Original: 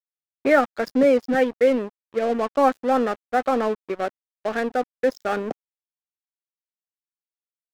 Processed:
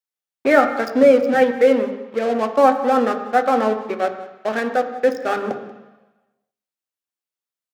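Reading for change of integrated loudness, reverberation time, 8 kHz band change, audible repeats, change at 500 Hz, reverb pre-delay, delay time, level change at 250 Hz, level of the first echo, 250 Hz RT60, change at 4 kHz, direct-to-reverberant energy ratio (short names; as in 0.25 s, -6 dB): +4.5 dB, 1.1 s, n/a, 1, +4.5 dB, 3 ms, 0.185 s, +3.0 dB, -18.0 dB, 1.0 s, +4.0 dB, 5.5 dB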